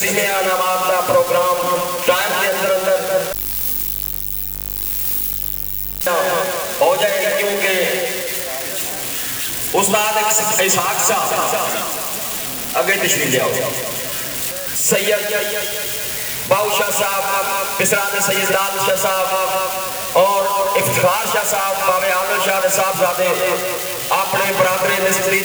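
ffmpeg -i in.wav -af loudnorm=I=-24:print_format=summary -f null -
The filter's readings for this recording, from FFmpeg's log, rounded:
Input Integrated:    -16.5 LUFS
Input True Peak:      -3.1 dBTP
Input LRA:             1.9 LU
Input Threshold:     -26.5 LUFS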